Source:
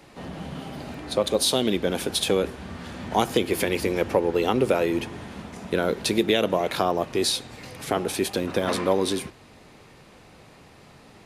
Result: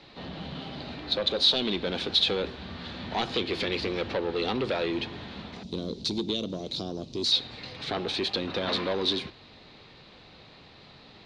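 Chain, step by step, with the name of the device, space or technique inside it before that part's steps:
0:05.63–0:07.32: drawn EQ curve 280 Hz 0 dB, 1,700 Hz −27 dB, 6,000 Hz +6 dB
overdriven synthesiser ladder filter (soft clipping −20 dBFS, distortion −10 dB; transistor ladder low-pass 4,400 Hz, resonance 65%)
level +8 dB

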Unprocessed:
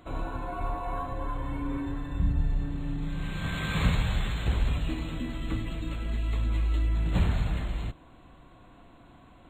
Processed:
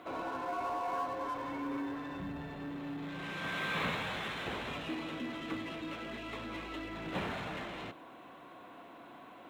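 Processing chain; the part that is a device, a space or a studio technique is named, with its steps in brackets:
phone line with mismatched companding (band-pass filter 330–3,400 Hz; mu-law and A-law mismatch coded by mu)
level −2 dB

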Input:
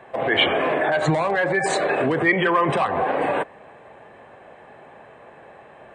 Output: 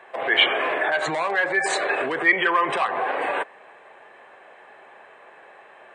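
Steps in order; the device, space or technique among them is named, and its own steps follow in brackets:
filter by subtraction (in parallel: low-pass filter 1,600 Hz 12 dB per octave + polarity inversion)
on the sum: parametric band 380 Hz +5 dB 0.5 octaves

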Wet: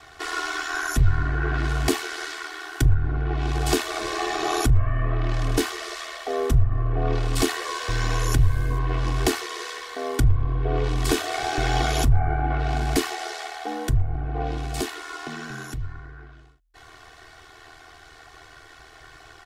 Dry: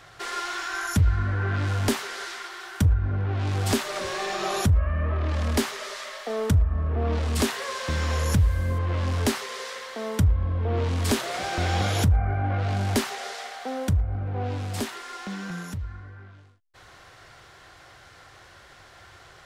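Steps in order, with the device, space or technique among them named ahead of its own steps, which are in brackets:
ring-modulated robot voice (ring modulation 40 Hz; comb filter 2.7 ms, depth 99%)
level +2 dB

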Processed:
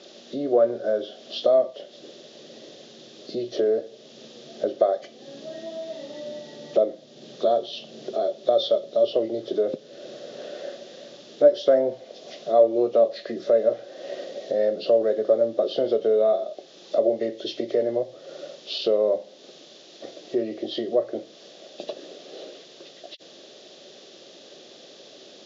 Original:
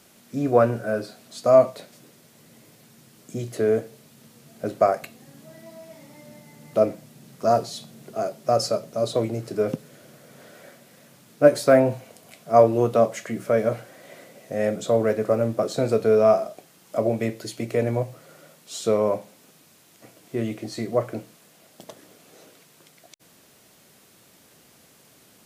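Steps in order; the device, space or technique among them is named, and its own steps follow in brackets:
hearing aid with frequency lowering (hearing-aid frequency compression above 1,700 Hz 1.5 to 1; downward compressor 2 to 1, threshold −41 dBFS, peak gain reduction 17.5 dB; loudspeaker in its box 300–5,500 Hz, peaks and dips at 370 Hz +8 dB, 570 Hz +9 dB, 970 Hz −10 dB, 1,400 Hz −7 dB, 2,200 Hz −8 dB, 3,500 Hz +7 dB)
level +8 dB

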